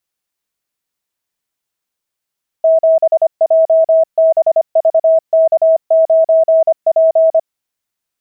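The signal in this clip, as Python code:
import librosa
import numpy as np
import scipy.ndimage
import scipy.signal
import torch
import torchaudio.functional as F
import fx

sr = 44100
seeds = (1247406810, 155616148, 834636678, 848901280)

y = fx.morse(sr, text='7JBVK9P', wpm=25, hz=647.0, level_db=-6.0)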